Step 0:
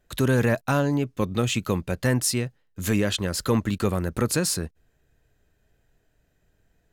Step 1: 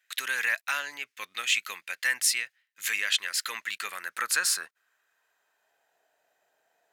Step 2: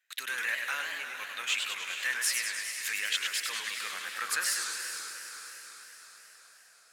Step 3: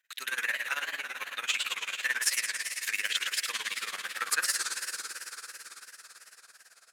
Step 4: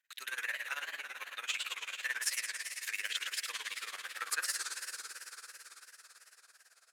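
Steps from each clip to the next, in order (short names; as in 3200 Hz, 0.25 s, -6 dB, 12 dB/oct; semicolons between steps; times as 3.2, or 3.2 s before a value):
high-pass sweep 2000 Hz -> 740 Hz, 3.78–6.01
diffused feedback echo 0.45 s, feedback 55%, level -9 dB; warbling echo 0.102 s, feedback 71%, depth 212 cents, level -5 dB; gain -5.5 dB
tremolo 18 Hz, depth 84%; gain +4.5 dB
HPF 330 Hz 12 dB/oct; gain -6.5 dB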